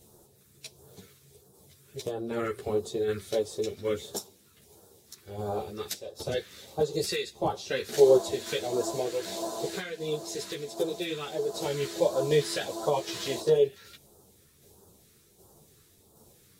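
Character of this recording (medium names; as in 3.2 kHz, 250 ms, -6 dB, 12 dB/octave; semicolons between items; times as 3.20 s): phasing stages 2, 1.5 Hz, lowest notch 730–2000 Hz; tremolo saw down 1.3 Hz, depth 40%; a shimmering, thickened sound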